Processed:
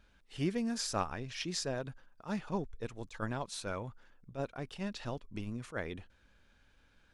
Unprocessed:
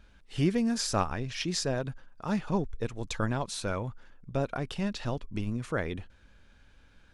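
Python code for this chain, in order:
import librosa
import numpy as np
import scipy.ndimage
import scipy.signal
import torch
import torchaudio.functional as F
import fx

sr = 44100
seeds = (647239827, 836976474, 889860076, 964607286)

y = fx.low_shelf(x, sr, hz=210.0, db=-4.5)
y = fx.attack_slew(y, sr, db_per_s=300.0)
y = y * 10.0 ** (-5.0 / 20.0)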